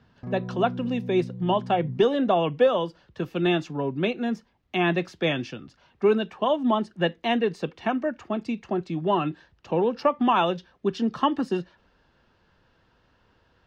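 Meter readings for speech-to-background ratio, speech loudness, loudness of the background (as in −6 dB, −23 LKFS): 11.0 dB, −25.5 LKFS, −36.5 LKFS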